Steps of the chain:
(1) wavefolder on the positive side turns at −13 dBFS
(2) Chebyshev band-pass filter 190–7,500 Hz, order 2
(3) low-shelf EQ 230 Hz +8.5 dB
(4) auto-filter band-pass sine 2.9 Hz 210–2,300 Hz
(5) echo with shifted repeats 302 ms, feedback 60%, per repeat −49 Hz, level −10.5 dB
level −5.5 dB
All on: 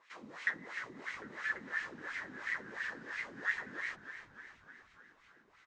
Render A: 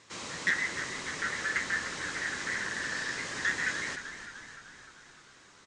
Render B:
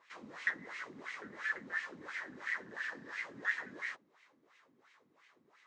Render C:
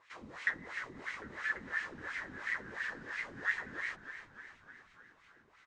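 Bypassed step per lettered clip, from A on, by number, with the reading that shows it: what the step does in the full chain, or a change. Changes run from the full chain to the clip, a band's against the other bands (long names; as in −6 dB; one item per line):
4, 8 kHz band +14.5 dB
5, echo-to-direct ratio −8.5 dB to none audible
2, 125 Hz band +3.0 dB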